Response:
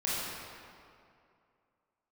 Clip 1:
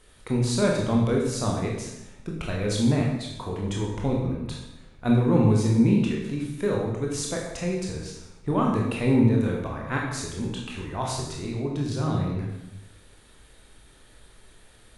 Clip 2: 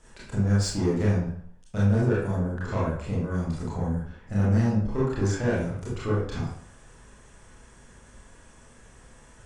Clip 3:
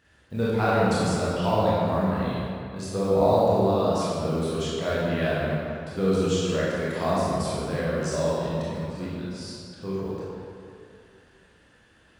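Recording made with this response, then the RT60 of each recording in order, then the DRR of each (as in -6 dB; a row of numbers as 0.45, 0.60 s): 3; 0.85, 0.60, 2.5 s; -2.0, -8.0, -8.5 dB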